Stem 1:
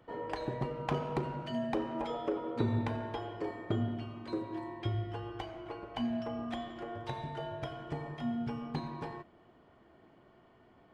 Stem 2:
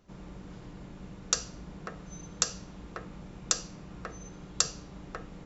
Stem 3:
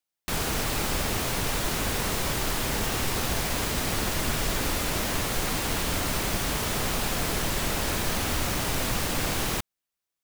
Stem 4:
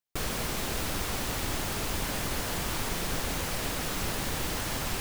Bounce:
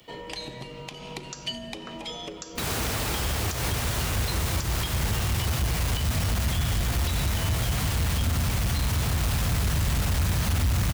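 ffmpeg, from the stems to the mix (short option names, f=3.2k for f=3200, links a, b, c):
-filter_complex "[0:a]acompressor=threshold=-40dB:ratio=5,aexciter=amount=7.8:drive=5.9:freq=2.2k,volume=3dB[a];[1:a]volume=-3dB[b];[2:a]highpass=f=59:w=0.5412,highpass=f=59:w=1.3066,asubboost=boost=11.5:cutoff=98,asoftclip=type=tanh:threshold=-18.5dB,adelay=2300,volume=2.5dB[c];[3:a]adelay=2400,volume=-17.5dB[d];[a][b][c][d]amix=inputs=4:normalize=0,alimiter=limit=-19dB:level=0:latency=1:release=159"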